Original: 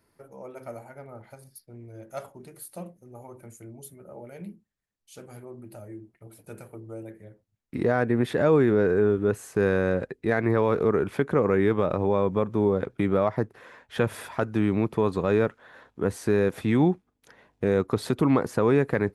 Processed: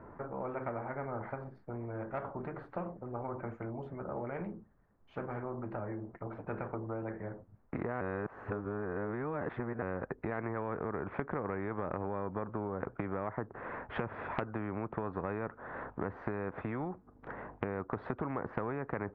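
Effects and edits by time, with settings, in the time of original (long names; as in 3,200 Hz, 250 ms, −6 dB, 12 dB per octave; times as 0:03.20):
0:08.01–0:09.82: reverse
whole clip: low-pass filter 1,300 Hz 24 dB per octave; downward compressor 6 to 1, threshold −37 dBFS; every bin compressed towards the loudest bin 2 to 1; level +5.5 dB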